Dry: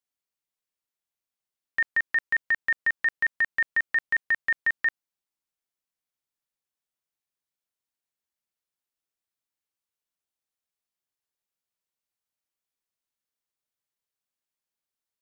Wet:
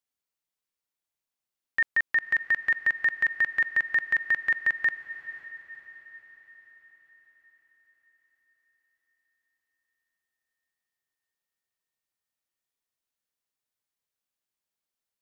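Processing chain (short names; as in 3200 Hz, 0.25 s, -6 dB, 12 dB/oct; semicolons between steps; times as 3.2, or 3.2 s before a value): diffused feedback echo 0.522 s, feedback 54%, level -14.5 dB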